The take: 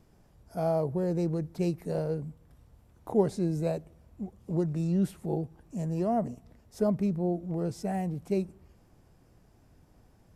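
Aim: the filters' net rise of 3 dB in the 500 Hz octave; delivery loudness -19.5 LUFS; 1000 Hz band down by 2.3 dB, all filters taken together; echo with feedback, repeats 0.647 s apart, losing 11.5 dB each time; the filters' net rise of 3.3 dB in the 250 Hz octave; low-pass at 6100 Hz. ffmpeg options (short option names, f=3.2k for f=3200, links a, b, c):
-af "lowpass=6.1k,equalizer=f=250:t=o:g=4.5,equalizer=f=500:t=o:g=4.5,equalizer=f=1k:t=o:g=-8,aecho=1:1:647|1294|1941:0.266|0.0718|0.0194,volume=8.5dB"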